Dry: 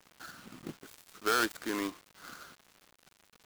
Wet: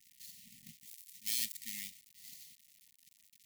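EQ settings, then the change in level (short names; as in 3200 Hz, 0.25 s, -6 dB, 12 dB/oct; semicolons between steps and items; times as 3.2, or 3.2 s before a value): brick-wall FIR band-stop 250–1800 Hz; pre-emphasis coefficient 0.8; +2.0 dB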